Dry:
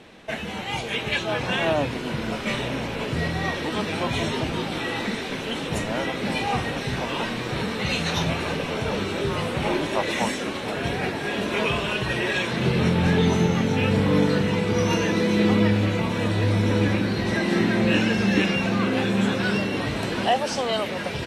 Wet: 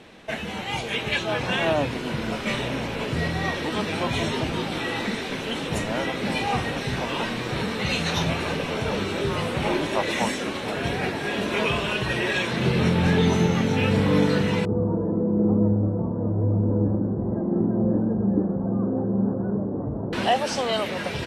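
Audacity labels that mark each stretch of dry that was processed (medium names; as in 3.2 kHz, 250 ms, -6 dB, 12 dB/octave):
14.650000	20.130000	Gaussian low-pass sigma 11 samples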